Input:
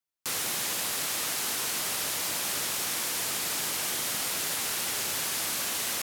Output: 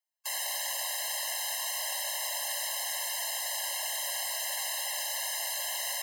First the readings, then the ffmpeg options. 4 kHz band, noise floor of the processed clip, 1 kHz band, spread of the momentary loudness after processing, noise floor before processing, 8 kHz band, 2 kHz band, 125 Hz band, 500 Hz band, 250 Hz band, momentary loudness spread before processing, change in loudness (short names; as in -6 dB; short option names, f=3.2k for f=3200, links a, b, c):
-2.5 dB, -35 dBFS, -2.5 dB, 0 LU, -32 dBFS, -3.0 dB, -3.0 dB, under -40 dB, -3.5 dB, under -40 dB, 0 LU, -3.0 dB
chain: -af "aeval=exprs='0.141*sin(PI/2*1.78*val(0)/0.141)':c=same,afftfilt=real='re*eq(mod(floor(b*sr/1024/540),2),1)':imag='im*eq(mod(floor(b*sr/1024/540),2),1)':win_size=1024:overlap=0.75,volume=-7.5dB"